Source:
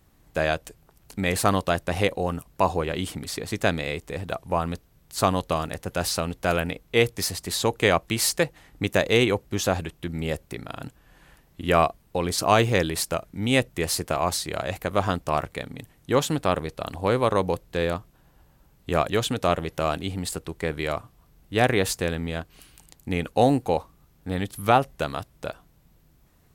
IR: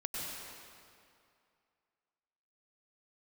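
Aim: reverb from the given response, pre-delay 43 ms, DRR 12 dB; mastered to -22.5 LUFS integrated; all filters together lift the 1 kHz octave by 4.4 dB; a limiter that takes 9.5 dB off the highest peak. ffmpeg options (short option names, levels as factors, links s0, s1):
-filter_complex "[0:a]equalizer=f=1000:t=o:g=6,alimiter=limit=0.282:level=0:latency=1,asplit=2[s0][s1];[1:a]atrim=start_sample=2205,adelay=43[s2];[s1][s2]afir=irnorm=-1:irlink=0,volume=0.188[s3];[s0][s3]amix=inputs=2:normalize=0,volume=1.58"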